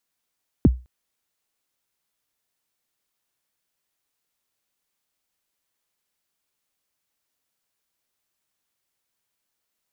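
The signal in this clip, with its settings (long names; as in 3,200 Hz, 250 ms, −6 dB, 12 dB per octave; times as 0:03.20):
synth kick length 0.21 s, from 360 Hz, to 62 Hz, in 30 ms, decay 0.28 s, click off, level −7 dB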